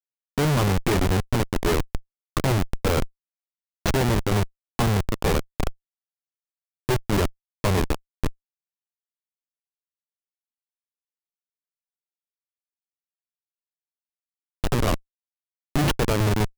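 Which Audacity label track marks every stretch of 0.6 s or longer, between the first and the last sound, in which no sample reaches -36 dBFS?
3.060000	3.860000	silence
5.710000	6.890000	silence
8.300000	14.640000	silence
14.970000	15.760000	silence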